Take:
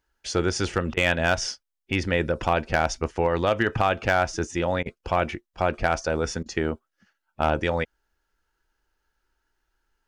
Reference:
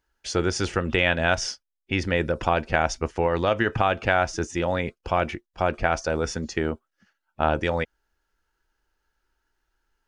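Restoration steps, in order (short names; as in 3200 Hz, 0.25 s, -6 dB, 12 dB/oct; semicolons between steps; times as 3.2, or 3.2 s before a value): clip repair -11.5 dBFS; interpolate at 0.94/4.83/6.43, 28 ms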